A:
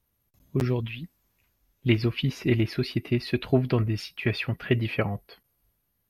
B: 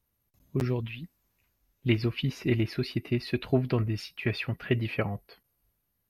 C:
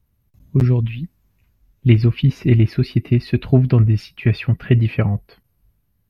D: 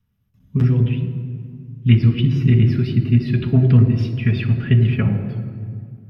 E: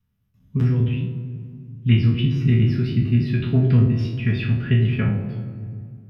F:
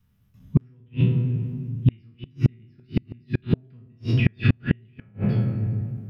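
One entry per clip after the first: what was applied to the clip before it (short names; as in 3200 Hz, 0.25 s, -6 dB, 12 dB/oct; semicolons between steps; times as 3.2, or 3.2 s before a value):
notch 3300 Hz, Q 25; gain -3 dB
tone controls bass +12 dB, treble -4 dB; gain +4.5 dB
reverb RT60 2.0 s, pre-delay 3 ms, DRR 4.5 dB; gain -10 dB
spectral trails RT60 0.48 s; gain -4 dB
flipped gate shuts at -13 dBFS, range -40 dB; gain +7 dB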